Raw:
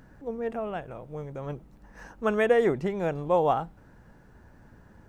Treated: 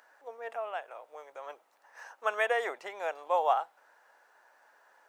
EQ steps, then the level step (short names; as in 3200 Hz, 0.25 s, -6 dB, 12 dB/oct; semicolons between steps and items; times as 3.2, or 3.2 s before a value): HPF 640 Hz 24 dB/oct; 0.0 dB